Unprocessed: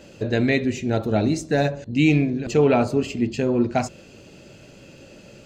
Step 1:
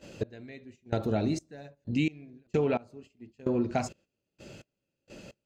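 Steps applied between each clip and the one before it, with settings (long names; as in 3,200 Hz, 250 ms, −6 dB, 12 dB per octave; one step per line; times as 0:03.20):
gate pattern "x...xx..x.." 65 BPM −24 dB
noise gate −48 dBFS, range −13 dB
downward compressor 3 to 1, threshold −24 dBFS, peak gain reduction 9 dB
level −2 dB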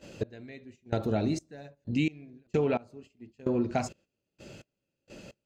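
no processing that can be heard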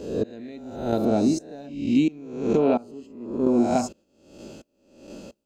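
peak hold with a rise ahead of every peak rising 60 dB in 0.74 s
octave-band graphic EQ 125/250/1,000/2,000 Hz −9/+7/+3/−11 dB
level +3.5 dB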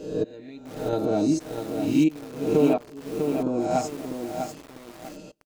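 comb filter 6.5 ms, depth 80%
feedback echo at a low word length 648 ms, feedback 35%, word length 6 bits, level −5.5 dB
level −3.5 dB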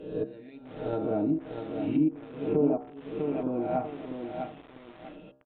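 downsampling to 8,000 Hz
hum removal 66.7 Hz, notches 25
treble cut that deepens with the level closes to 850 Hz, closed at −17 dBFS
level −4.5 dB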